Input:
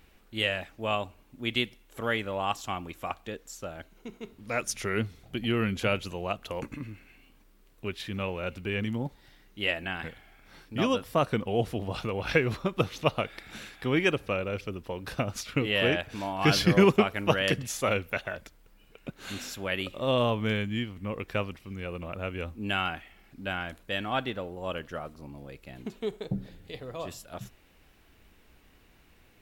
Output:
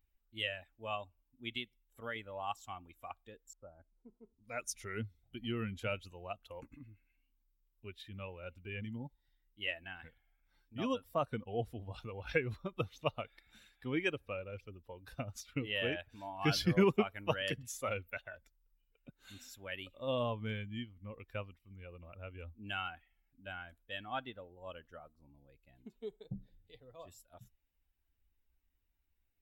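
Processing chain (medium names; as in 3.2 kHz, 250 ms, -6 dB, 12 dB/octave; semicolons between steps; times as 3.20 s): expander on every frequency bin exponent 1.5; 1.55–2.16 s: compression 2:1, threshold -33 dBFS, peak gain reduction 5 dB; 3.53–4.44 s: low-pass 1.2 kHz 24 dB/octave; trim -6.5 dB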